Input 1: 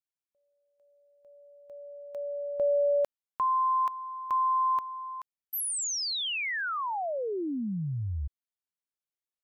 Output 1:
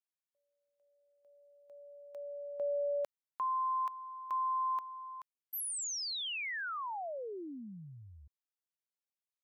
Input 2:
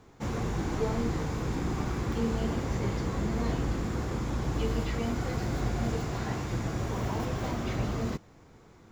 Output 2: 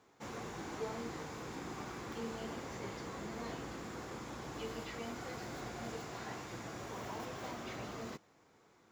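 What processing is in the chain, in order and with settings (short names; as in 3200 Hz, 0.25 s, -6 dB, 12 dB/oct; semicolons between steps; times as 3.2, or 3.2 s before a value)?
HPF 480 Hz 6 dB/oct; gain -6.5 dB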